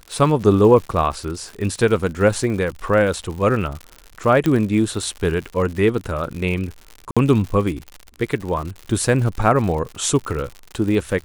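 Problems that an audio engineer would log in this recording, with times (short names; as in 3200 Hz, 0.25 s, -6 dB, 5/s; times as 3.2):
crackle 110/s -27 dBFS
4.46 pop -7 dBFS
7.11–7.17 gap 56 ms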